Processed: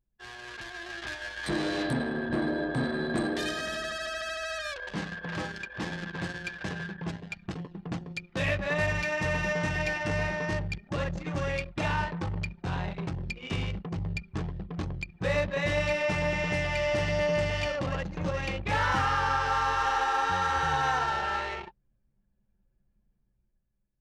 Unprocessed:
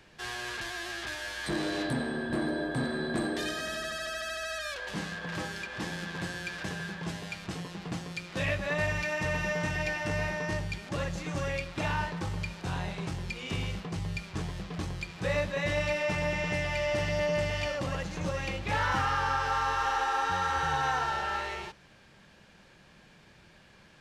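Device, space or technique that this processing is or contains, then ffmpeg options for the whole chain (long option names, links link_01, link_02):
voice memo with heavy noise removal: -af "anlmdn=1.58,dynaudnorm=framelen=120:gausssize=13:maxgain=8dB,volume=-6dB"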